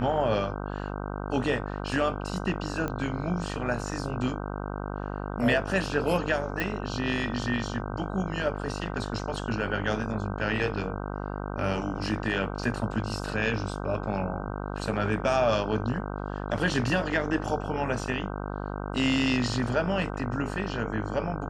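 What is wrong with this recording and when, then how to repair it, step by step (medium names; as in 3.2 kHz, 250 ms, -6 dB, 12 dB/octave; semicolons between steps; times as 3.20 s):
buzz 50 Hz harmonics 31 -34 dBFS
2.88 s: pop -18 dBFS
6.60 s: pop -15 dBFS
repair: de-click; de-hum 50 Hz, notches 31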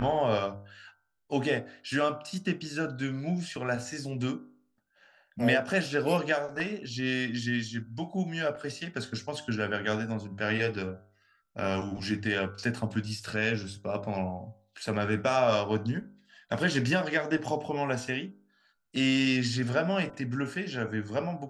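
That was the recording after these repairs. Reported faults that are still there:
nothing left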